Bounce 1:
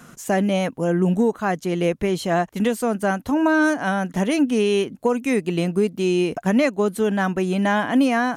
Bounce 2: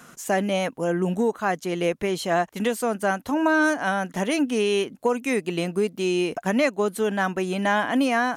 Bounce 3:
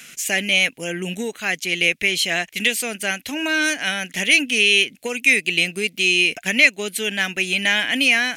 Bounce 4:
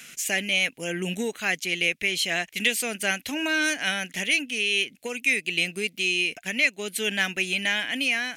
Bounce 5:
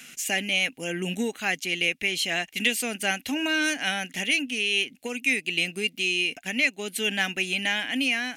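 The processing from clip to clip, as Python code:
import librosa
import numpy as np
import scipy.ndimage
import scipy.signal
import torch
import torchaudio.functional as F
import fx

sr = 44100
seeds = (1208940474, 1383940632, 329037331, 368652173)

y1 = fx.low_shelf(x, sr, hz=250.0, db=-10.0)
y2 = fx.high_shelf_res(y1, sr, hz=1600.0, db=13.5, q=3.0)
y2 = y2 * librosa.db_to_amplitude(-3.5)
y3 = fx.rider(y2, sr, range_db=4, speed_s=0.5)
y3 = y3 * librosa.db_to_amplitude(-6.0)
y4 = fx.small_body(y3, sr, hz=(260.0, 790.0, 2800.0), ring_ms=45, db=7)
y4 = y4 * librosa.db_to_amplitude(-1.5)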